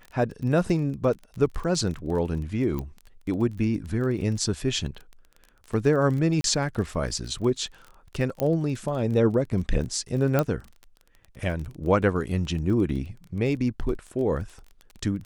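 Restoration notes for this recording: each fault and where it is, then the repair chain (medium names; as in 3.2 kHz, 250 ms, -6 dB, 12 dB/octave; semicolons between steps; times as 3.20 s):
crackle 24 per s -33 dBFS
2.79 s: pop -19 dBFS
6.41–6.44 s: dropout 32 ms
8.40 s: pop -12 dBFS
10.39 s: pop -9 dBFS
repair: de-click; interpolate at 6.41 s, 32 ms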